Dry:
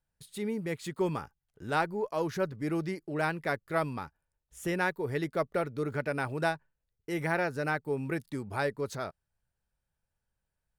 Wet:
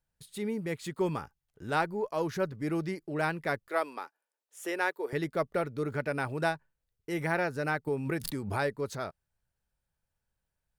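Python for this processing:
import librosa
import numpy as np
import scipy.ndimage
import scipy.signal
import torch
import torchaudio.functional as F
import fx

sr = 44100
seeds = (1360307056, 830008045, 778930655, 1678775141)

y = fx.highpass(x, sr, hz=340.0, slope=24, at=(3.68, 5.13))
y = fx.pre_swell(y, sr, db_per_s=60.0, at=(7.87, 8.73))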